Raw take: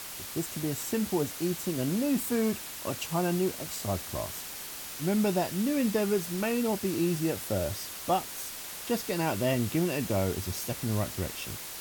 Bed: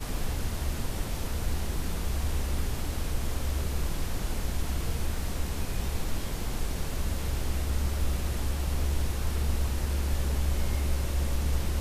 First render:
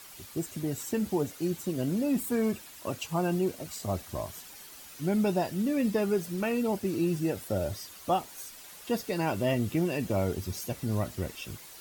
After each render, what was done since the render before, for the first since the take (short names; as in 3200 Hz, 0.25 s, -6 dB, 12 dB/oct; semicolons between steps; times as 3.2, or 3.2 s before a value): denoiser 10 dB, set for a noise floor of -41 dBFS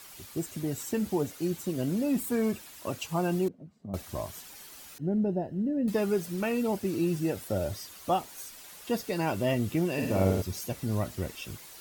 3.48–3.94 band-pass 190 Hz, Q 2.3; 4.98–5.88 running mean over 38 samples; 9.92–10.42 flutter echo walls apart 9 m, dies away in 0.79 s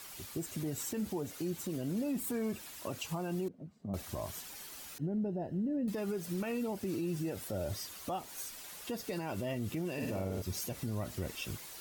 compressor, threshold -30 dBFS, peak gain reduction 10 dB; limiter -28 dBFS, peak gain reduction 7.5 dB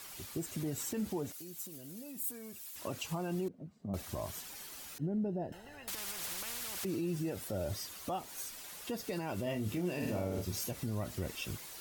1.32–2.76 pre-emphasis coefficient 0.8; 5.52–6.85 spectral compressor 10:1; 9.43–10.71 doubler 28 ms -7 dB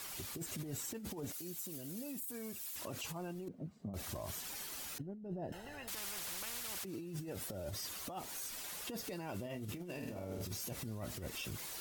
negative-ratio compressor -39 dBFS, ratio -0.5; limiter -33.5 dBFS, peak gain reduction 8.5 dB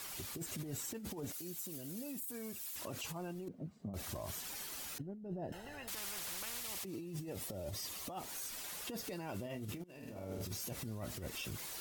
6.6–8.12 bell 1500 Hz -10 dB 0.2 oct; 9.84–10.31 fade in, from -17.5 dB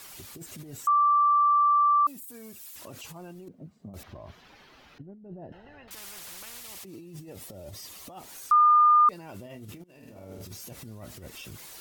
0.87–2.07 bleep 1170 Hz -18 dBFS; 4.03–5.91 air absorption 280 m; 8.51–9.09 bleep 1210 Hz -15 dBFS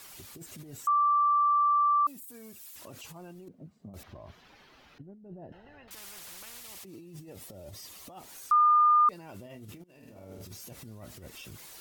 gain -3 dB